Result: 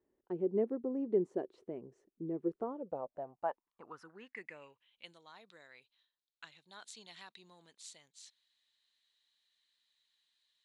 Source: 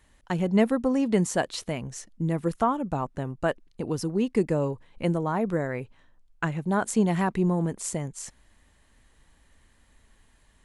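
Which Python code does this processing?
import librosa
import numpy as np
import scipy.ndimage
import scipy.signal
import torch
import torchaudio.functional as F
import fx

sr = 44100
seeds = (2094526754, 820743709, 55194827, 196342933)

y = fx.filter_sweep_bandpass(x, sr, from_hz=380.0, to_hz=3900.0, start_s=2.6, end_s=5.15, q=5.9)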